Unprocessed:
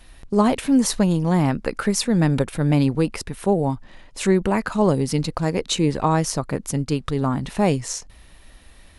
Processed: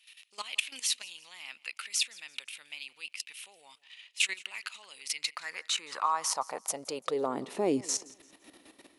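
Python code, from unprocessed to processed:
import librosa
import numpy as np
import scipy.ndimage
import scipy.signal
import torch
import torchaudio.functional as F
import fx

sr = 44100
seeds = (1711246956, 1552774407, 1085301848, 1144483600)

p1 = fx.peak_eq(x, sr, hz=1600.0, db=-5.5, octaves=0.26)
p2 = fx.level_steps(p1, sr, step_db=15)
p3 = fx.filter_sweep_highpass(p2, sr, from_hz=2700.0, to_hz=310.0, start_s=4.93, end_s=7.78, q=3.4)
y = p3 + fx.echo_feedback(p3, sr, ms=170, feedback_pct=36, wet_db=-22.0, dry=0)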